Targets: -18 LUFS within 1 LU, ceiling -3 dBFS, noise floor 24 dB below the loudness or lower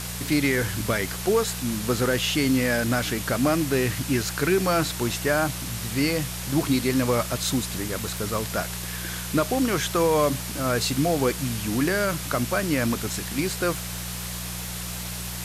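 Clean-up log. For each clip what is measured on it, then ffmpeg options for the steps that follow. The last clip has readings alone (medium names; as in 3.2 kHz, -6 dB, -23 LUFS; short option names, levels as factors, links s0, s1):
hum 60 Hz; highest harmonic 180 Hz; hum level -33 dBFS; noise floor -33 dBFS; noise floor target -49 dBFS; loudness -25.0 LUFS; peak level -11.0 dBFS; loudness target -18.0 LUFS
-> -af "bandreject=f=60:t=h:w=4,bandreject=f=120:t=h:w=4,bandreject=f=180:t=h:w=4"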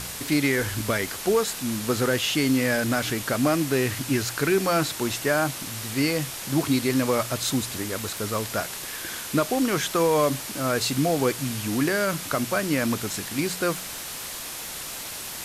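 hum not found; noise floor -35 dBFS; noise floor target -49 dBFS
-> -af "afftdn=nr=14:nf=-35"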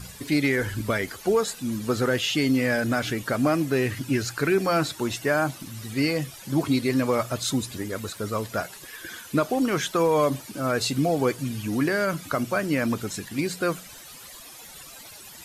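noise floor -44 dBFS; noise floor target -50 dBFS
-> -af "afftdn=nr=6:nf=-44"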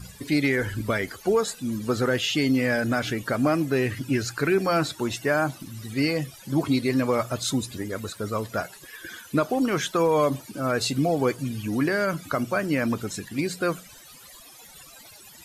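noise floor -48 dBFS; noise floor target -50 dBFS
-> -af "afftdn=nr=6:nf=-48"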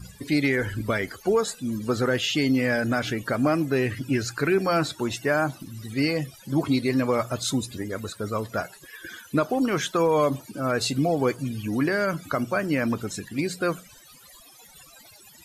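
noise floor -51 dBFS; loudness -25.5 LUFS; peak level -12.0 dBFS; loudness target -18.0 LUFS
-> -af "volume=2.37"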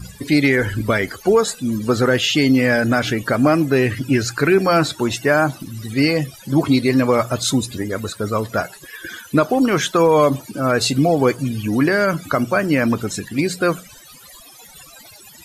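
loudness -18.0 LUFS; peak level -4.5 dBFS; noise floor -43 dBFS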